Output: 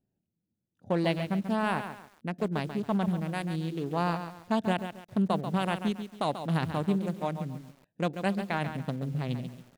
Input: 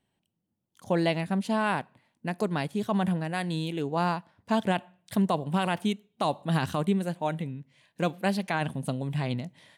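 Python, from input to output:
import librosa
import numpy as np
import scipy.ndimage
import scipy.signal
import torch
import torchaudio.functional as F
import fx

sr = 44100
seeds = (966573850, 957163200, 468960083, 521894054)

y = fx.wiener(x, sr, points=41)
y = fx.echo_crushed(y, sr, ms=138, feedback_pct=35, bits=8, wet_db=-9)
y = F.gain(torch.from_numpy(y), -1.5).numpy()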